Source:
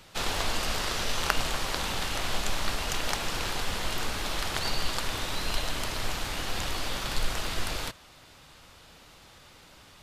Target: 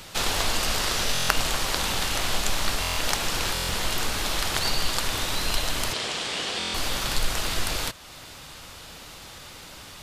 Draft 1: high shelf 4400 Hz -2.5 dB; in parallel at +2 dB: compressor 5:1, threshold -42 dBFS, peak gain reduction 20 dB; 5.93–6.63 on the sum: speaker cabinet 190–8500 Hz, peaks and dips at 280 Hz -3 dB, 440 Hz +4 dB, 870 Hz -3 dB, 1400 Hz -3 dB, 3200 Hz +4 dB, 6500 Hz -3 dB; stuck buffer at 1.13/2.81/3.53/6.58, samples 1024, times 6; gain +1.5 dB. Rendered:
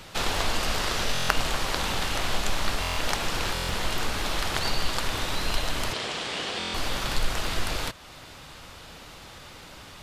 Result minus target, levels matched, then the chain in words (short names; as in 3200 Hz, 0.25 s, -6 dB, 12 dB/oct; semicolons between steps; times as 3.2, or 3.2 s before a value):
8000 Hz band -3.5 dB
high shelf 4400 Hz +5.5 dB; in parallel at +2 dB: compressor 5:1, threshold -42 dBFS, peak gain reduction 21 dB; 5.93–6.63 on the sum: speaker cabinet 190–8500 Hz, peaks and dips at 280 Hz -3 dB, 440 Hz +4 dB, 870 Hz -3 dB, 1400 Hz -3 dB, 3200 Hz +4 dB, 6500 Hz -3 dB; stuck buffer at 1.13/2.81/3.53/6.58, samples 1024, times 6; gain +1.5 dB